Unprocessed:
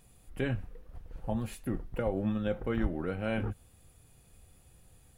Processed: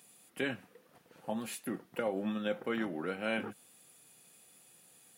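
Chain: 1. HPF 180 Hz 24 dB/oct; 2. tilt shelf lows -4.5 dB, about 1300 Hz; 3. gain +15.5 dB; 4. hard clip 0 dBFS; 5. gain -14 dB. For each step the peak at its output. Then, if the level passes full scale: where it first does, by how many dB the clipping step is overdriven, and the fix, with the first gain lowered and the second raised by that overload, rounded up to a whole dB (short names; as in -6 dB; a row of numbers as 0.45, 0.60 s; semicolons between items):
-19.0, -21.5, -6.0, -6.0, -20.0 dBFS; no overload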